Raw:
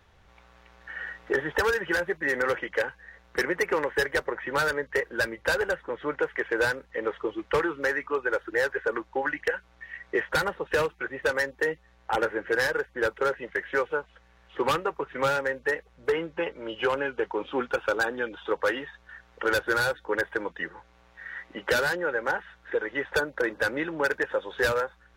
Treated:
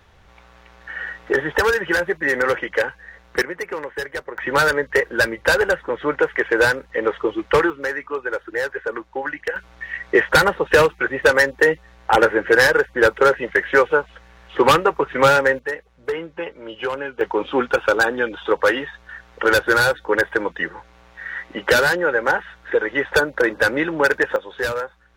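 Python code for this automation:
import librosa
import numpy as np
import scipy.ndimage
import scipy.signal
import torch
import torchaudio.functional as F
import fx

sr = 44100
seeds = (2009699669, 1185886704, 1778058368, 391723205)

y = fx.gain(x, sr, db=fx.steps((0.0, 7.0), (3.42, -2.0), (4.38, 9.0), (7.7, 2.0), (9.56, 11.5), (15.59, 1.0), (17.21, 9.0), (24.36, 1.5)))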